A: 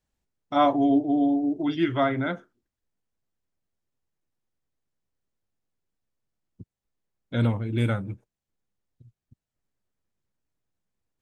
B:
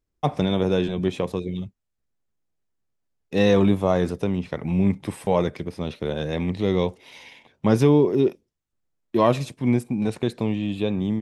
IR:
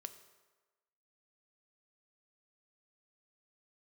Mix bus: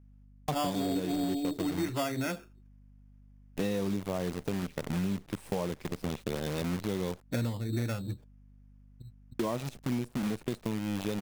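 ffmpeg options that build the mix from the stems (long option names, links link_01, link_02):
-filter_complex "[0:a]dynaudnorm=framelen=400:gausssize=3:maxgain=6.5dB,acrusher=samples=11:mix=1:aa=0.000001,volume=-2dB[link_01];[1:a]equalizer=frequency=200:width=0.72:gain=4,acrusher=bits=5:dc=4:mix=0:aa=0.000001,adelay=250,volume=-3dB,asplit=3[link_02][link_03][link_04];[link_02]atrim=end=7.22,asetpts=PTS-STARTPTS,afade=type=out:start_time=7.216:duration=0.004:curve=hsin[link_05];[link_03]atrim=start=7.22:end=8.93,asetpts=PTS-STARTPTS,volume=0[link_06];[link_04]atrim=start=8.93,asetpts=PTS-STARTPTS,afade=type=in:duration=0.004:curve=hsin[link_07];[link_05][link_06][link_07]concat=n=3:v=0:a=1[link_08];[link_01][link_08]amix=inputs=2:normalize=0,aeval=exprs='val(0)+0.00178*(sin(2*PI*50*n/s)+sin(2*PI*2*50*n/s)/2+sin(2*PI*3*50*n/s)/3+sin(2*PI*4*50*n/s)/4+sin(2*PI*5*50*n/s)/5)':channel_layout=same,acompressor=threshold=-30dB:ratio=5"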